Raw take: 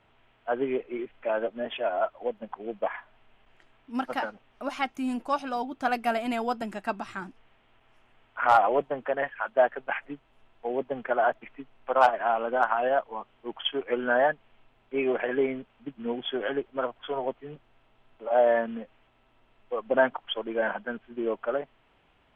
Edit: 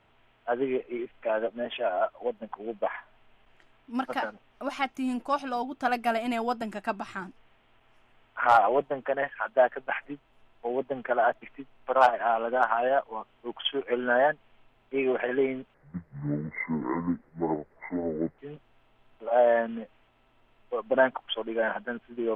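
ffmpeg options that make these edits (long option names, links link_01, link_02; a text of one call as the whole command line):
ffmpeg -i in.wav -filter_complex "[0:a]asplit=3[link_01][link_02][link_03];[link_01]atrim=end=15.744[link_04];[link_02]atrim=start=15.74:end=17.38,asetpts=PTS-STARTPTS,asetrate=27342,aresample=44100[link_05];[link_03]atrim=start=17.376[link_06];[link_04][link_05]acrossfade=duration=0.004:curve1=hsin:curve2=hsin[link_07];[link_07][link_06]acrossfade=duration=0.004:curve1=hsin:curve2=hsin" out.wav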